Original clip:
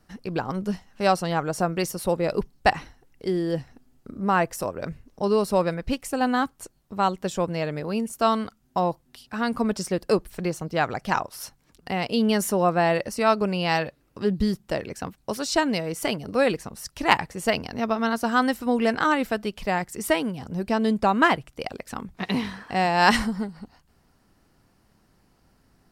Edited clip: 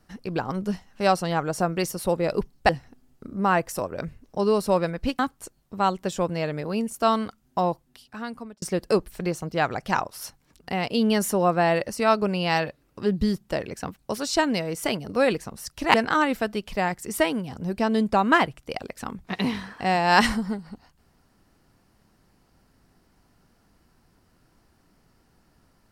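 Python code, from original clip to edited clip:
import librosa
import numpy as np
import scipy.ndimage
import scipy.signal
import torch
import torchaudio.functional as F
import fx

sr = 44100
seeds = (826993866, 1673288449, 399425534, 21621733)

y = fx.edit(x, sr, fx.cut(start_s=2.69, length_s=0.84),
    fx.cut(start_s=6.03, length_s=0.35),
    fx.fade_out_span(start_s=8.86, length_s=0.95),
    fx.cut(start_s=17.13, length_s=1.71), tone=tone)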